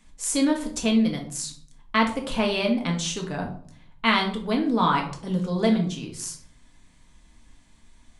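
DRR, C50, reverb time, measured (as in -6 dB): 1.0 dB, 9.0 dB, 0.55 s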